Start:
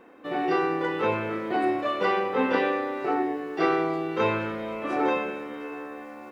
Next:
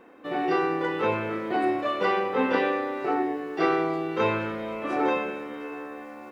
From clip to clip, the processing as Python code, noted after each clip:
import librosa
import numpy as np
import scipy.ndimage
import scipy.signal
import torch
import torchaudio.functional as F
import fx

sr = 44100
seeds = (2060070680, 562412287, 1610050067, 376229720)

y = x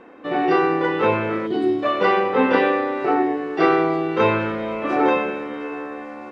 y = fx.spec_box(x, sr, start_s=1.47, length_s=0.36, low_hz=460.0, high_hz=2900.0, gain_db=-13)
y = fx.air_absorb(y, sr, metres=80.0)
y = F.gain(torch.from_numpy(y), 7.0).numpy()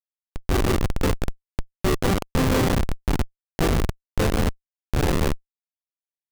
y = fx.rev_gated(x, sr, seeds[0], gate_ms=240, shape='rising', drr_db=5.0)
y = fx.schmitt(y, sr, flips_db=-12.0)